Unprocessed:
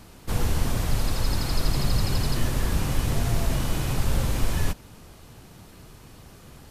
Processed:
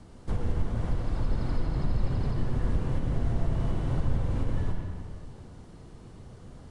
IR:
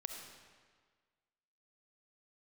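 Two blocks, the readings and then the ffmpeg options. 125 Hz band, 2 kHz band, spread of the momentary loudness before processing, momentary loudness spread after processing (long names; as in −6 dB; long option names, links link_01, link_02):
−2.5 dB, −11.5 dB, 3 LU, 18 LU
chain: -filter_complex "[0:a]acrossover=split=240|3300[link_01][link_02][link_03];[link_03]acompressor=threshold=-47dB:ratio=6[link_04];[link_01][link_02][link_04]amix=inputs=3:normalize=0,tiltshelf=frequency=970:gain=5.5,alimiter=limit=-12.5dB:level=0:latency=1:release=355,bandreject=frequency=2500:width=16[link_05];[1:a]atrim=start_sample=2205,asetrate=33957,aresample=44100[link_06];[link_05][link_06]afir=irnorm=-1:irlink=0,aresample=22050,aresample=44100,volume=-4dB"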